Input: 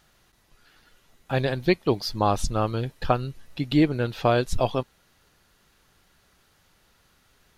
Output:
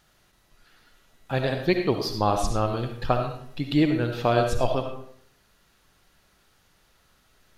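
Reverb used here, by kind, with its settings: digital reverb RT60 0.63 s, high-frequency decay 0.7×, pre-delay 30 ms, DRR 4.5 dB; gain -1.5 dB

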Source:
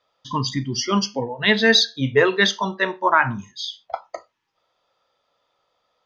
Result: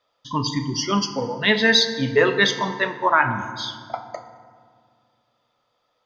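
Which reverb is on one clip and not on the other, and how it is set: FDN reverb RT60 1.9 s, low-frequency decay 1.5×, high-frequency decay 0.55×, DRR 8 dB; gain -1 dB

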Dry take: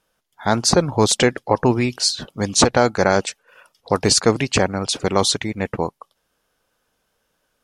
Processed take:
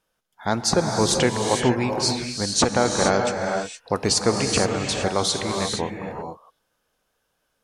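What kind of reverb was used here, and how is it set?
non-linear reverb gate 0.49 s rising, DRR 2.5 dB; gain -5 dB

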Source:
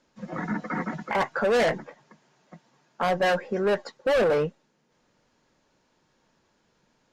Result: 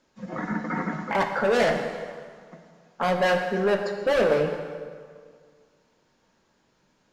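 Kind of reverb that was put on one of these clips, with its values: plate-style reverb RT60 1.9 s, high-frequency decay 0.8×, DRR 4 dB

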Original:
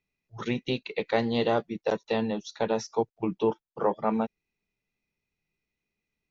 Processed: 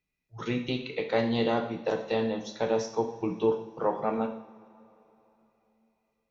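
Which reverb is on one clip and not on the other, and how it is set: two-slope reverb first 0.61 s, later 3.5 s, from -21 dB, DRR 3 dB; gain -2.5 dB

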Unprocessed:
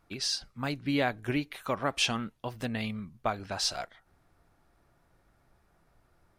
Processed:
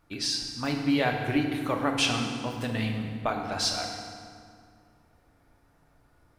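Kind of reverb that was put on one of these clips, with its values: FDN reverb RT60 2.2 s, low-frequency decay 1.35×, high-frequency decay 0.7×, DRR 1.5 dB; gain +1 dB

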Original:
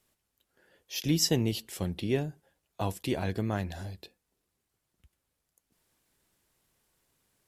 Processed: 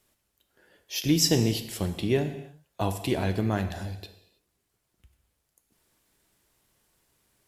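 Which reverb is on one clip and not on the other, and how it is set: non-linear reverb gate 0.35 s falling, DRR 7.5 dB; gain +3.5 dB

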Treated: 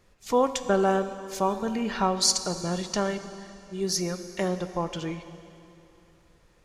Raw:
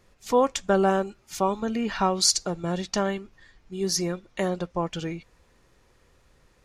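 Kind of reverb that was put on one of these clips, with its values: plate-style reverb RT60 2.9 s, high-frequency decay 0.95×, DRR 10 dB; gain -1.5 dB

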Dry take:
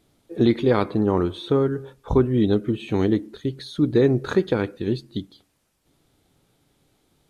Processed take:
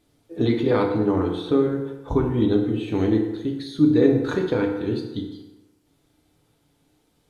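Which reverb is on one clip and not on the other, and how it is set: FDN reverb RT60 1.1 s, low-frequency decay 0.85×, high-frequency decay 0.65×, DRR 0.5 dB; gain -3.5 dB

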